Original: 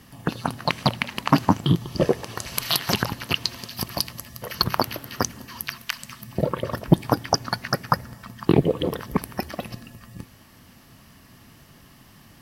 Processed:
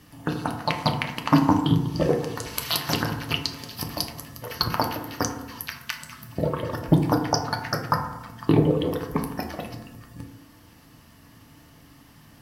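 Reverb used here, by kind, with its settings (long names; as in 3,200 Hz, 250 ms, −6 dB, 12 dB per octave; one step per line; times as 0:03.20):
feedback delay network reverb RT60 0.92 s, low-frequency decay 1.05×, high-frequency decay 0.35×, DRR 2 dB
level −3.5 dB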